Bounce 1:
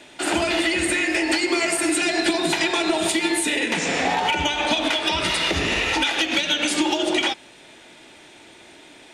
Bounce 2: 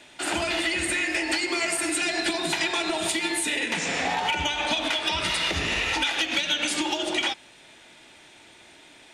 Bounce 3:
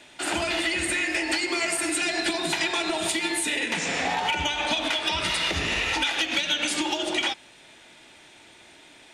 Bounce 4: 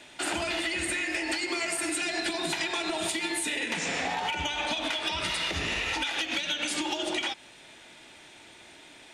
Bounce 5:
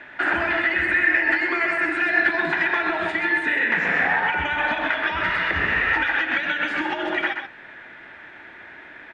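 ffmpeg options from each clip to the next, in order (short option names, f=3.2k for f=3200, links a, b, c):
-af "equalizer=f=360:t=o:w=1.8:g=-5,volume=-3dB"
-af anull
-af "acompressor=threshold=-27dB:ratio=6"
-af "lowpass=f=1.7k:t=q:w=5,aecho=1:1:129:0.447,volume=4dB"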